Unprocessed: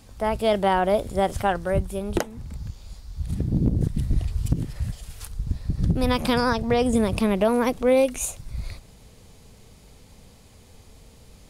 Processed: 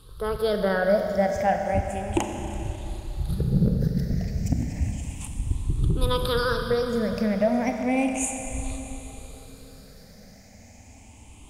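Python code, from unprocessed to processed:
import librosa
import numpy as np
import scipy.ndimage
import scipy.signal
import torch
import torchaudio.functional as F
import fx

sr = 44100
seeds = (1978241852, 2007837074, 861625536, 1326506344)

y = fx.spec_ripple(x, sr, per_octave=0.63, drift_hz=0.33, depth_db=18)
y = fx.rider(y, sr, range_db=5, speed_s=2.0)
y = fx.rev_schroeder(y, sr, rt60_s=3.7, comb_ms=30, drr_db=4.0)
y = F.gain(torch.from_numpy(y), -7.0).numpy()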